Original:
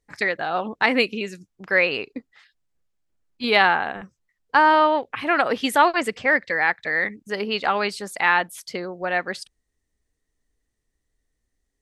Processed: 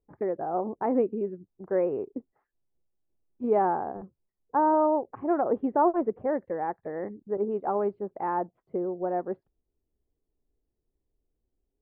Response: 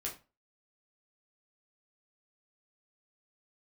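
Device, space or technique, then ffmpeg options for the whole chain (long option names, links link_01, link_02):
under water: -filter_complex "[0:a]lowpass=frequency=890:width=0.5412,lowpass=frequency=890:width=1.3066,equalizer=frequency=370:width_type=o:width=0.4:gain=7,asettb=1/sr,asplit=3[link_01][link_02][link_03];[link_01]atrim=end=7.374[link_04];[link_02]atrim=start=7.37:end=7.78,asetpts=PTS-STARTPTS,afade=type=in:duration=0.004:curve=qsin,afade=type=out:start_time=0.406:duration=0.004:curve=qsin,agate=range=-33dB:threshold=-24dB:ratio=3:detection=peak[link_05];[link_03]atrim=start=7.776[link_06];[link_04][link_05]acrossfade=duration=0.004:curve1=hsin:curve2=qsin[link_07];[link_07][link_06]acrossfade=duration=0.004:curve1=qsin:curve2=hsin,volume=-3.5dB"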